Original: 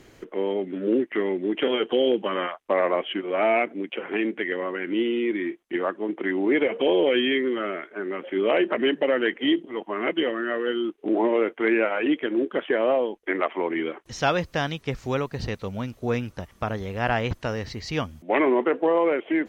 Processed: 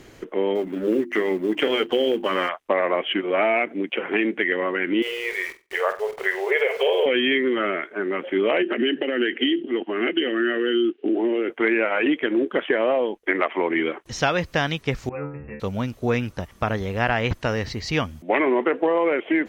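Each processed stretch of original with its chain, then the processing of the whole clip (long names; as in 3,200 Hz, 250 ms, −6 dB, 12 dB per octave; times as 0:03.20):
0:00.55–0:02.49: mu-law and A-law mismatch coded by A + mains-hum notches 50/100/150/200/250/300/350 Hz
0:05.02–0:07.06: linear-phase brick-wall high-pass 380 Hz + centre clipping without the shift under −43 dBFS + flutter between parallel walls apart 8 metres, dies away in 0.27 s
0:08.62–0:11.50: downward compressor 5 to 1, threshold −27 dBFS + loudspeaker in its box 190–4,400 Hz, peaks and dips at 250 Hz +8 dB, 360 Hz +8 dB, 600 Hz −3 dB, 1,000 Hz −9 dB, 1,600 Hz +4 dB, 2,900 Hz +9 dB
0:15.09–0:15.60: linear-phase brick-wall low-pass 2,800 Hz + stiff-string resonator 71 Hz, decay 0.65 s, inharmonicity 0.002
whole clip: dynamic equaliser 2,100 Hz, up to +4 dB, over −38 dBFS, Q 1.3; downward compressor, threshold −21 dBFS; level +4.5 dB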